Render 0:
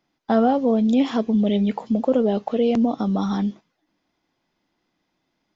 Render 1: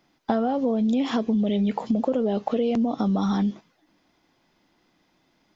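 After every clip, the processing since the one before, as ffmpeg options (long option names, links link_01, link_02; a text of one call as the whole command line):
ffmpeg -i in.wav -filter_complex "[0:a]asplit=2[link_01][link_02];[link_02]alimiter=limit=-18.5dB:level=0:latency=1:release=20,volume=0dB[link_03];[link_01][link_03]amix=inputs=2:normalize=0,acompressor=threshold=-22dB:ratio=6,volume=1.5dB" out.wav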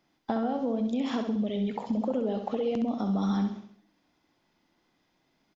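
ffmpeg -i in.wav -af "aecho=1:1:66|132|198|264|330|396:0.447|0.21|0.0987|0.0464|0.0218|0.0102,volume=-6.5dB" out.wav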